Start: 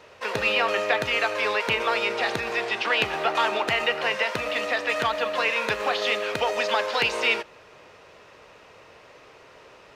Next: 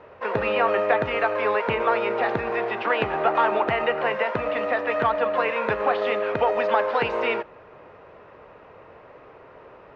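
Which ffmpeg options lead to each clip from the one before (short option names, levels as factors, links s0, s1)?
-af "lowpass=1400,volume=1.68"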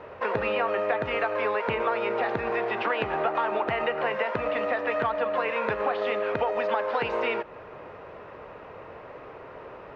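-af "acompressor=threshold=0.0316:ratio=3,volume=1.58"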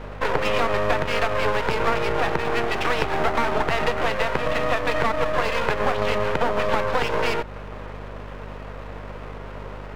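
-af "aeval=exprs='max(val(0),0)':c=same,aeval=exprs='val(0)+0.00562*(sin(2*PI*50*n/s)+sin(2*PI*2*50*n/s)/2+sin(2*PI*3*50*n/s)/3+sin(2*PI*4*50*n/s)/4+sin(2*PI*5*50*n/s)/5)':c=same,volume=2.66"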